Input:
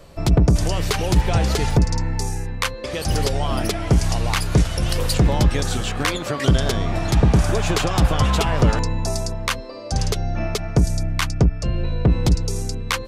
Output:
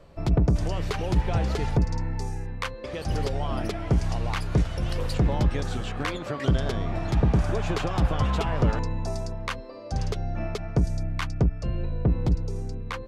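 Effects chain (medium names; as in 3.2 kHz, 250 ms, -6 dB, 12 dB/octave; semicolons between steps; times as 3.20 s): low-pass 2.3 kHz 6 dB/octave, from 11.85 s 1.1 kHz; trim -6 dB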